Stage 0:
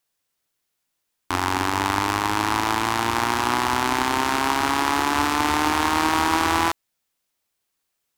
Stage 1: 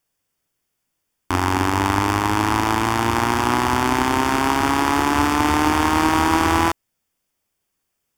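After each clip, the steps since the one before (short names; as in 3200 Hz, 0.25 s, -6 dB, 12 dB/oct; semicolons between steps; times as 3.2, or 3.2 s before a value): low shelf 410 Hz +7.5 dB; notch 4000 Hz, Q 5.6; gain +1 dB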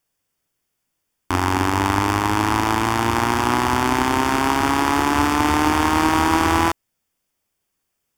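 nothing audible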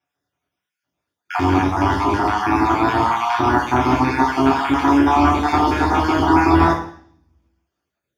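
random spectral dropouts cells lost 48%; reverb RT60 0.55 s, pre-delay 3 ms, DRR -6 dB; gain -13 dB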